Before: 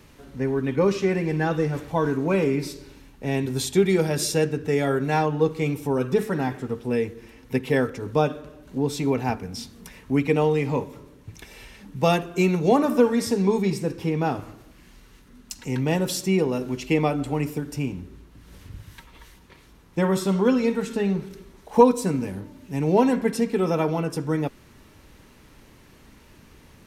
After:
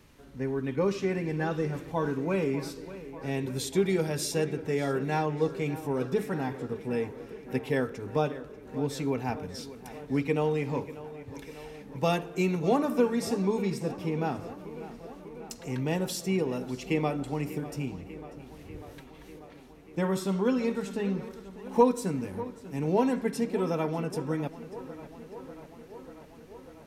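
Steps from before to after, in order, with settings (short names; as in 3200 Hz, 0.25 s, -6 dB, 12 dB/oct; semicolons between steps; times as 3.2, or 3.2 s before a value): tape echo 0.593 s, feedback 81%, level -14.5 dB, low-pass 3900 Hz; gain -6.5 dB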